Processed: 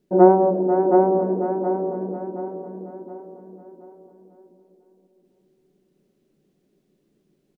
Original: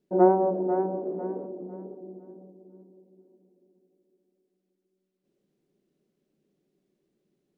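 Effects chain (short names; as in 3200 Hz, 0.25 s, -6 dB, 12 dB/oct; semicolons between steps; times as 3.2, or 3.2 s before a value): low shelf 89 Hz +8 dB; on a send: feedback echo 0.722 s, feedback 40%, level -4 dB; on the sum: gain +6 dB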